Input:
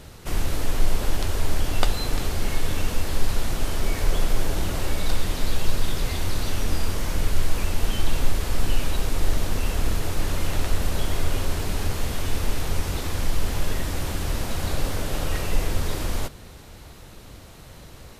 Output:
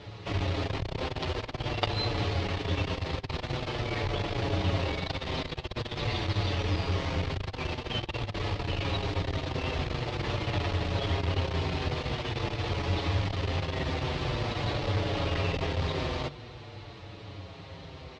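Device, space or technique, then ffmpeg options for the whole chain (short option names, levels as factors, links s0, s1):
barber-pole flanger into a guitar amplifier: -filter_complex "[0:a]asplit=2[s0][s1];[s1]adelay=6.6,afreqshift=-0.47[s2];[s0][s2]amix=inputs=2:normalize=1,asoftclip=type=tanh:threshold=0.112,highpass=100,equalizer=f=100:t=q:w=4:g=7,equalizer=f=220:t=q:w=4:g=-8,equalizer=f=1500:t=q:w=4:g=-6,lowpass=f=4300:w=0.5412,lowpass=f=4300:w=1.3066,volume=1.88"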